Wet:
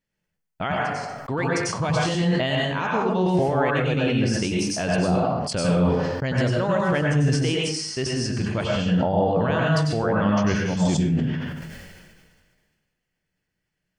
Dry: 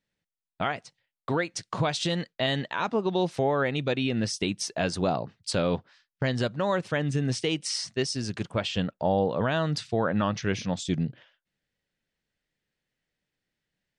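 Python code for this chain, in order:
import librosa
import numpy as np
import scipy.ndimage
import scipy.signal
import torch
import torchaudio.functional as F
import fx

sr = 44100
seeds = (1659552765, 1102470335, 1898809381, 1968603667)

p1 = fx.low_shelf(x, sr, hz=87.0, db=6.5)
p2 = fx.notch(p1, sr, hz=3800.0, q=5.9)
p3 = fx.level_steps(p2, sr, step_db=15)
p4 = p2 + (p3 * librosa.db_to_amplitude(2.5))
p5 = fx.rev_plate(p4, sr, seeds[0], rt60_s=0.59, hf_ratio=0.7, predelay_ms=85, drr_db=-3.0)
p6 = fx.sustainer(p5, sr, db_per_s=33.0)
y = p6 * librosa.db_to_amplitude(-5.5)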